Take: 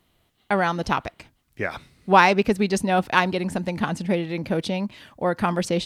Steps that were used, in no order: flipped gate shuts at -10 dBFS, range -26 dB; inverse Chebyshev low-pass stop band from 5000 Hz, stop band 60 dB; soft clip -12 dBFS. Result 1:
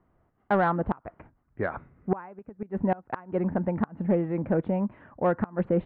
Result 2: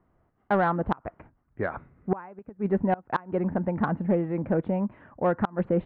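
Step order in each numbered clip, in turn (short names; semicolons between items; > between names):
flipped gate > inverse Chebyshev low-pass > soft clip; inverse Chebyshev low-pass > flipped gate > soft clip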